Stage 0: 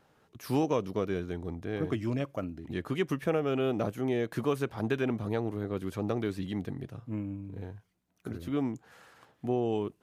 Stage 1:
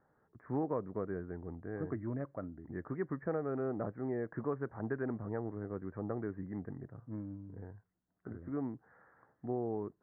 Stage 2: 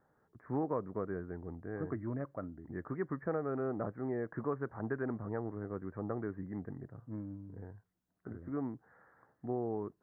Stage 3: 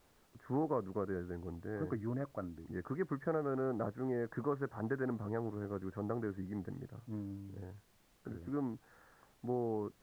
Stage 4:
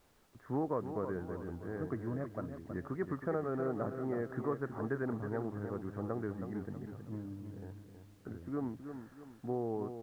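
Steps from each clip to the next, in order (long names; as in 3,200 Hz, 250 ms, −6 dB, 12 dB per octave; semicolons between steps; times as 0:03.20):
Butterworth low-pass 1,900 Hz 72 dB per octave; level −7 dB
dynamic equaliser 1,200 Hz, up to +3 dB, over −54 dBFS, Q 1.8
background noise pink −70 dBFS
repeating echo 321 ms, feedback 41%, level −8.5 dB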